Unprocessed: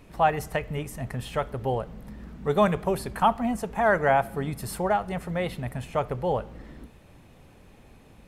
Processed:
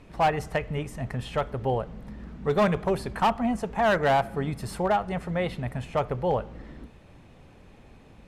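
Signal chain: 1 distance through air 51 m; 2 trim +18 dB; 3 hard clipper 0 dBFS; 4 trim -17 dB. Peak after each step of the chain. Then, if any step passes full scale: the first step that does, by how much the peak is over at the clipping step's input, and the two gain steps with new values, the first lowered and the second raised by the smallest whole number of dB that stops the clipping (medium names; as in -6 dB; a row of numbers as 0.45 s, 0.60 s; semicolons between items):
-9.0 dBFS, +9.0 dBFS, 0.0 dBFS, -17.0 dBFS; step 2, 9.0 dB; step 2 +9 dB, step 4 -8 dB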